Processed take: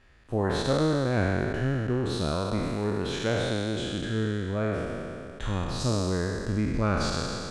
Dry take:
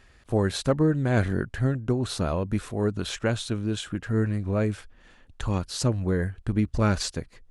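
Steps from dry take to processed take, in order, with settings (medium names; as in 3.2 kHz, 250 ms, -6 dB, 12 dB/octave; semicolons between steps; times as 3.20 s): spectral sustain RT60 2.74 s; treble shelf 7.1 kHz -12 dB; trim -5 dB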